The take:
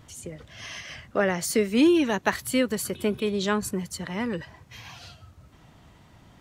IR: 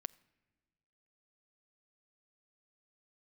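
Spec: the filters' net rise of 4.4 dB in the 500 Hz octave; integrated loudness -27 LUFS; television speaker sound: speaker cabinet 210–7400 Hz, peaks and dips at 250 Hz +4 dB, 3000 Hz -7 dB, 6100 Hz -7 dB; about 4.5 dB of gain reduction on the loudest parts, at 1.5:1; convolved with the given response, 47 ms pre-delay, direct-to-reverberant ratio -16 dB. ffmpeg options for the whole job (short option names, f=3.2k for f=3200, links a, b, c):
-filter_complex "[0:a]equalizer=f=500:t=o:g=5.5,acompressor=threshold=-26dB:ratio=1.5,asplit=2[a][b];[1:a]atrim=start_sample=2205,adelay=47[c];[b][c]afir=irnorm=-1:irlink=0,volume=19.5dB[d];[a][d]amix=inputs=2:normalize=0,highpass=f=210:w=0.5412,highpass=f=210:w=1.3066,equalizer=f=250:t=q:w=4:g=4,equalizer=f=3k:t=q:w=4:g=-7,equalizer=f=6.1k:t=q:w=4:g=-7,lowpass=f=7.4k:w=0.5412,lowpass=f=7.4k:w=1.3066,volume=-16.5dB"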